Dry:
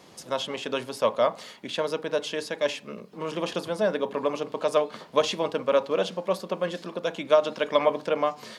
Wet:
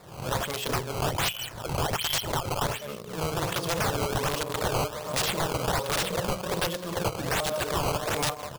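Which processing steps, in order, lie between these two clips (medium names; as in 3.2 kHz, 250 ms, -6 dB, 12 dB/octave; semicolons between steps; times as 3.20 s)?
delay 203 ms -18 dB; 1.04–2.66 s: frequency inversion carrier 3.6 kHz; band-passed feedback delay 159 ms, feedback 83%, band-pass 1.1 kHz, level -23.5 dB; in parallel at -6 dB: word length cut 6-bit, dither none; on the sum: hum notches 60/120/180/240/300/360/420 Hz; decimation with a swept rate 14×, swing 160% 1.3 Hz; integer overflow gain 19.5 dB; graphic EQ 125/250/2000 Hz +8/-10/-4 dB; swell ahead of each attack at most 82 dB/s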